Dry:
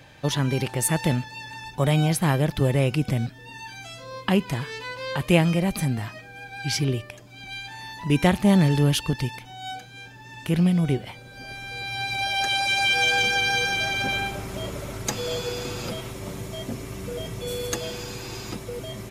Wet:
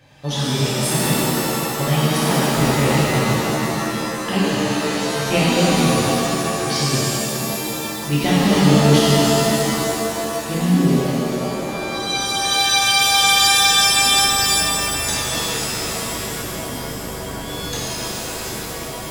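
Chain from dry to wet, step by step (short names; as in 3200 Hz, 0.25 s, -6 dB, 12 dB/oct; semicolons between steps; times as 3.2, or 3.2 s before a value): dynamic EQ 3900 Hz, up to +7 dB, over -41 dBFS, Q 1.3; shimmer reverb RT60 3.3 s, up +7 st, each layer -2 dB, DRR -9 dB; gain -6.5 dB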